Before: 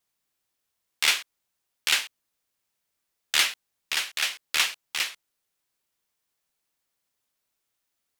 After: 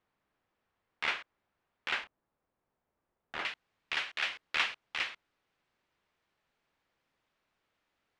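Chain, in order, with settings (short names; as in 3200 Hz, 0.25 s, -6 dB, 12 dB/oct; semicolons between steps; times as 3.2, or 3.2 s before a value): G.711 law mismatch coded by mu; LPF 1700 Hz 12 dB/oct, from 2.04 s 1000 Hz, from 3.45 s 2500 Hz; gain -3 dB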